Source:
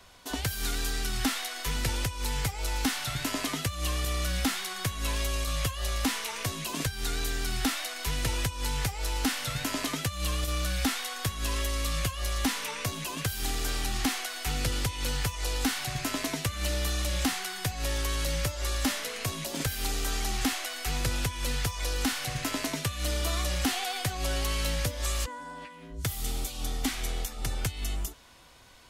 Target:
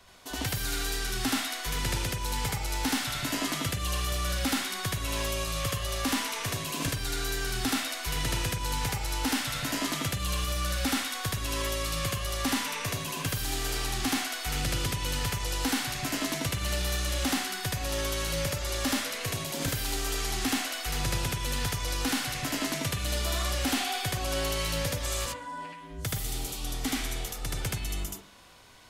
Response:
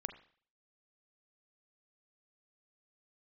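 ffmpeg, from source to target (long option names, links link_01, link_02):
-filter_complex "[0:a]asplit=2[link_01][link_02];[link_02]highpass=frequency=88:width=0.5412,highpass=frequency=88:width=1.3066[link_03];[1:a]atrim=start_sample=2205,adelay=76[link_04];[link_03][link_04]afir=irnorm=-1:irlink=0,volume=3dB[link_05];[link_01][link_05]amix=inputs=2:normalize=0,volume=-2.5dB"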